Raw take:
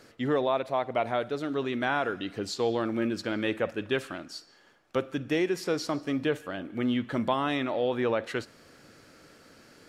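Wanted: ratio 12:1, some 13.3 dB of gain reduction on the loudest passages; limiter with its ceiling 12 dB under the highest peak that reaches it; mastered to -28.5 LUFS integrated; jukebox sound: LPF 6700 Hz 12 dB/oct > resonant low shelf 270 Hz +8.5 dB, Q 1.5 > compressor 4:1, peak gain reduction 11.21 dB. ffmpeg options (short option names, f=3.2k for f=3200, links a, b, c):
-af "acompressor=threshold=-36dB:ratio=12,alimiter=level_in=9.5dB:limit=-24dB:level=0:latency=1,volume=-9.5dB,lowpass=6.7k,lowshelf=f=270:t=q:w=1.5:g=8.5,acompressor=threshold=-44dB:ratio=4,volume=19.5dB"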